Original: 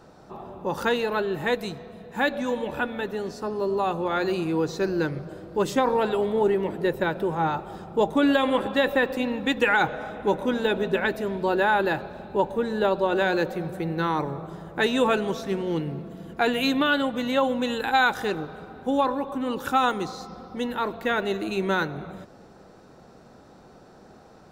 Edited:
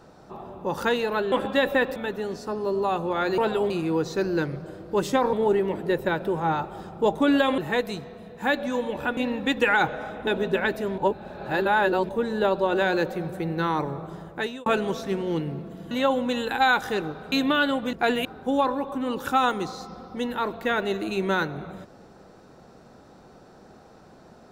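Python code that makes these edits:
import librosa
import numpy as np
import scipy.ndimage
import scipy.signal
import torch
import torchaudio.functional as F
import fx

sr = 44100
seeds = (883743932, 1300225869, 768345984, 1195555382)

y = fx.edit(x, sr, fx.swap(start_s=1.32, length_s=1.59, other_s=8.53, other_length_s=0.64),
    fx.move(start_s=5.96, length_s=0.32, to_s=4.33),
    fx.cut(start_s=10.27, length_s=0.4),
    fx.reverse_span(start_s=11.38, length_s=1.11),
    fx.fade_out_span(start_s=14.61, length_s=0.45),
    fx.swap(start_s=16.31, length_s=0.32, other_s=17.24, other_length_s=1.41), tone=tone)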